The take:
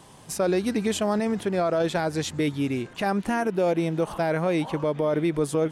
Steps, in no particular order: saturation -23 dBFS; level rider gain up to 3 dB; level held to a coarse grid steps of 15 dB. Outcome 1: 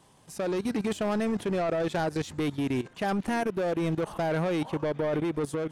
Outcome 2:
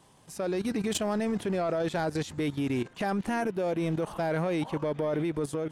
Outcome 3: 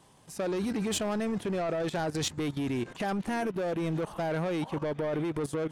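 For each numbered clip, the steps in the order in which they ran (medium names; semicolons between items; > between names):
saturation > level held to a coarse grid > level rider; level held to a coarse grid > saturation > level rider; saturation > level rider > level held to a coarse grid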